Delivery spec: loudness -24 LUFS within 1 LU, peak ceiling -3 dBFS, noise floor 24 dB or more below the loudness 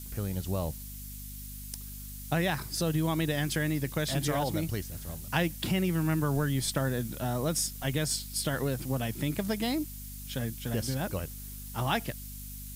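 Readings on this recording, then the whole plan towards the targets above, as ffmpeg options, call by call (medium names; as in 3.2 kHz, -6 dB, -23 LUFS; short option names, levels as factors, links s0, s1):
hum 50 Hz; highest harmonic 250 Hz; hum level -42 dBFS; noise floor -42 dBFS; noise floor target -56 dBFS; loudness -31.5 LUFS; peak level -13.0 dBFS; loudness target -24.0 LUFS
-> -af "bandreject=f=50:t=h:w=6,bandreject=f=100:t=h:w=6,bandreject=f=150:t=h:w=6,bandreject=f=200:t=h:w=6,bandreject=f=250:t=h:w=6"
-af "afftdn=nr=14:nf=-42"
-af "volume=2.37"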